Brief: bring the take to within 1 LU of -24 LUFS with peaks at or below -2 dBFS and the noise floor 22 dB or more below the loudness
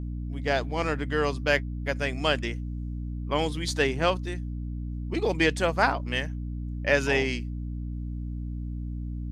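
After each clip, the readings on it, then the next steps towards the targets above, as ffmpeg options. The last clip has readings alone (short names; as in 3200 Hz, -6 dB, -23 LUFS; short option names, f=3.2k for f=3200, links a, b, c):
hum 60 Hz; harmonics up to 300 Hz; hum level -30 dBFS; loudness -28.5 LUFS; peak -8.0 dBFS; loudness target -24.0 LUFS
-> -af "bandreject=f=60:t=h:w=6,bandreject=f=120:t=h:w=6,bandreject=f=180:t=h:w=6,bandreject=f=240:t=h:w=6,bandreject=f=300:t=h:w=6"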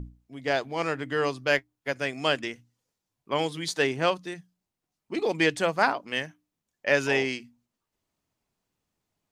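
hum none; loudness -27.5 LUFS; peak -9.0 dBFS; loudness target -24.0 LUFS
-> -af "volume=3.5dB"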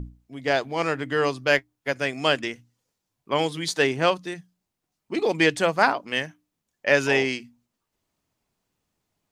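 loudness -24.0 LUFS; peak -5.5 dBFS; noise floor -82 dBFS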